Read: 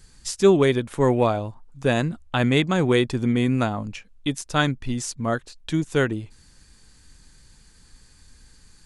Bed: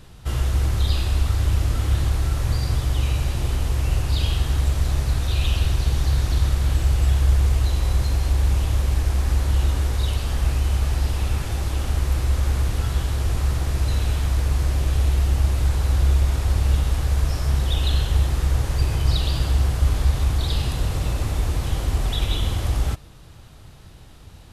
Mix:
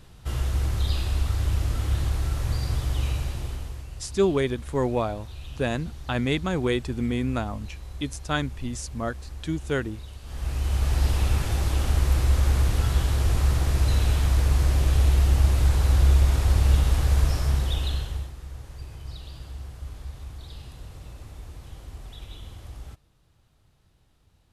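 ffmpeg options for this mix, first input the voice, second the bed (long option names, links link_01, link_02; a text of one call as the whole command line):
ffmpeg -i stem1.wav -i stem2.wav -filter_complex "[0:a]adelay=3750,volume=-5.5dB[link_01];[1:a]volume=14dB,afade=type=out:start_time=3.07:duration=0.8:silence=0.199526,afade=type=in:start_time=10.22:duration=0.84:silence=0.11885,afade=type=out:start_time=17.22:duration=1.11:silence=0.11885[link_02];[link_01][link_02]amix=inputs=2:normalize=0" out.wav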